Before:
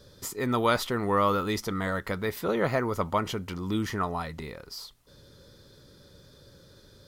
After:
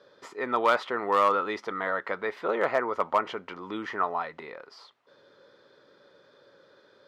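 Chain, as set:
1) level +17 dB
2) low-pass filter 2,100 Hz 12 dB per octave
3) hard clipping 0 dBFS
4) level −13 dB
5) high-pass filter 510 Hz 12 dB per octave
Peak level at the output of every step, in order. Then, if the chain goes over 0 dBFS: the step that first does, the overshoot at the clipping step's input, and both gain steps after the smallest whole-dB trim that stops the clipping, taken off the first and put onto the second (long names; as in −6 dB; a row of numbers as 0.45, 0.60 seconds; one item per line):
+7.0, +5.0, 0.0, −13.0, −9.5 dBFS
step 1, 5.0 dB
step 1 +12 dB, step 4 −8 dB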